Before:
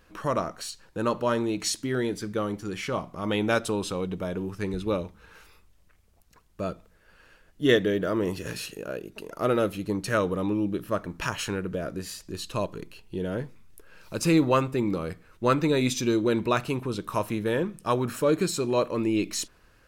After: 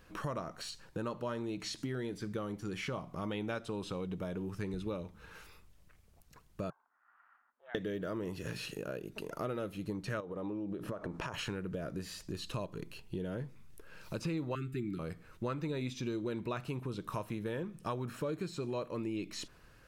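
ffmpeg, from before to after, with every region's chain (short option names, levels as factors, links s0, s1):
-filter_complex "[0:a]asettb=1/sr,asplit=3[s0][s1][s2];[s0]atrim=end=6.704[s3];[s1]atrim=start=6.7:end=7.75,asetpts=PTS-STARTPTS,afade=t=in:d=0.004:c=qsin,afade=t=out:st=1.046:d=0.004:c=qsin,acompressor=threshold=0.0126:ratio=2:attack=3.2:release=140:knee=1:detection=peak,aeval=exprs='val(0)*sin(2*PI*240*n/s)':c=same,asuperpass=centerf=1200:order=4:qfactor=1.8[s4];[s2]atrim=start=7.746[s5];[s3][s4]acrossfade=d=0.004:c1=hsin:c2=qsin[s6];[s6][s5]acrossfade=d=0.004:c1=qsin:c2=hsin,asettb=1/sr,asplit=3[s7][s8][s9];[s7]atrim=end=10.204[s10];[s8]atrim=start=10.2:end=11.34,asetpts=PTS-STARTPTS,afade=t=in:d=0.004:c=qsin,afade=t=out:st=1.136:d=0.004:c=qsin,lowpass=9900,equalizer=f=590:w=0.49:g=11.5,acompressor=threshold=0.0355:ratio=12:attack=3.2:release=140:knee=1:detection=peak[s11];[s9]atrim=start=11.336[s12];[s10][s11]acrossfade=d=0.004:c1=hsin:c2=qsin[s13];[s13][s12]acrossfade=d=0.004:c1=qsin:c2=hsin,asettb=1/sr,asplit=3[s14][s15][s16];[s14]atrim=end=14.554[s17];[s15]atrim=start=14.55:end=14.99,asetpts=PTS-STARTPTS,afade=t=in:d=0.004:c=qsin,afade=t=out:st=0.436:d=0.004:c=qsin,asuperstop=centerf=720:order=20:qfactor=0.84,equalizer=f=5600:w=4.5:g=-11.5[s18];[s16]atrim=start=14.986[s19];[s17][s18]acrossfade=d=0.004:c1=hsin:c2=qsin[s20];[s20][s19]acrossfade=d=0.004:c1=qsin:c2=hsin,acrossover=split=4600[s21][s22];[s22]acompressor=threshold=0.00501:ratio=4:attack=1:release=60[s23];[s21][s23]amix=inputs=2:normalize=0,equalizer=f=140:w=2.1:g=5.5,acompressor=threshold=0.0178:ratio=4,volume=0.841"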